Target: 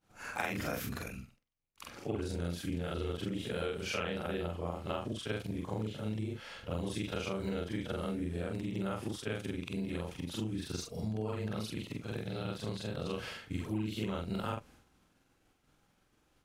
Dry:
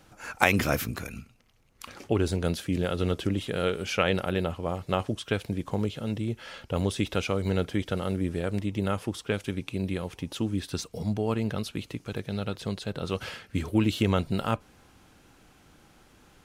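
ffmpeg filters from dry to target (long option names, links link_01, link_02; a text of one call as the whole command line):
ffmpeg -i in.wav -af "afftfilt=real='re':imag='-im':win_size=4096:overlap=0.75,agate=range=-33dB:threshold=-53dB:ratio=3:detection=peak,acompressor=threshold=-32dB:ratio=6" out.wav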